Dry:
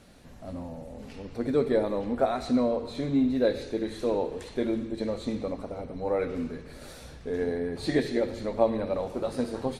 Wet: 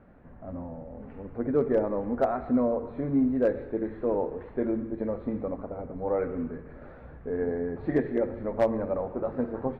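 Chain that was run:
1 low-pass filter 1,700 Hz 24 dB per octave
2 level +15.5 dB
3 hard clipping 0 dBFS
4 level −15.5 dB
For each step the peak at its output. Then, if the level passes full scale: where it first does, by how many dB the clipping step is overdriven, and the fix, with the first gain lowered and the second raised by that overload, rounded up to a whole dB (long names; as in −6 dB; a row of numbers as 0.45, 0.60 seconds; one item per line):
−9.0, +6.5, 0.0, −15.5 dBFS
step 2, 6.5 dB
step 2 +8.5 dB, step 4 −8.5 dB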